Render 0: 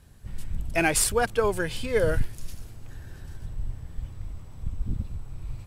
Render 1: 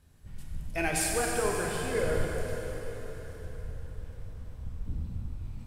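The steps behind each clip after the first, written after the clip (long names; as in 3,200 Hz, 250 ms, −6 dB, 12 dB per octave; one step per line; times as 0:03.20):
dense smooth reverb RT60 4.5 s, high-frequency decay 0.85×, DRR −2 dB
level −8.5 dB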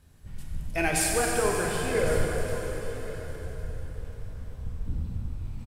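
single-tap delay 1,107 ms −16 dB
level +3.5 dB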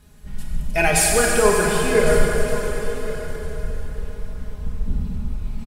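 comb filter 4.8 ms, depth 77%
level +6.5 dB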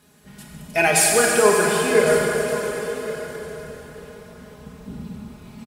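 high-pass filter 190 Hz 12 dB per octave
level +1 dB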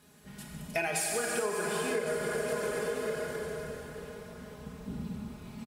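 downward compressor 16 to 1, threshold −24 dBFS, peak gain reduction 15 dB
level −4 dB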